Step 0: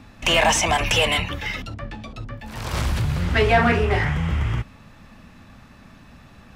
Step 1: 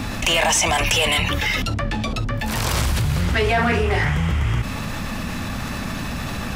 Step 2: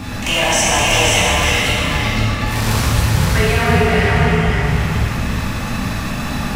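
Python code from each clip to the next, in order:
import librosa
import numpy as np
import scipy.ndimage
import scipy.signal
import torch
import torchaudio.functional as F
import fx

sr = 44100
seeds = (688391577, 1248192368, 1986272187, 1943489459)

y1 = fx.high_shelf(x, sr, hz=5200.0, db=8.5)
y1 = fx.env_flatten(y1, sr, amount_pct=70)
y1 = F.gain(torch.from_numpy(y1), -4.0).numpy()
y2 = y1 + 10.0 ** (-4.0 / 20.0) * np.pad(y1, (int(522 * sr / 1000.0), 0))[:len(y1)]
y2 = fx.rev_plate(y2, sr, seeds[0], rt60_s=2.5, hf_ratio=0.85, predelay_ms=0, drr_db=-6.5)
y2 = F.gain(torch.from_numpy(y2), -3.5).numpy()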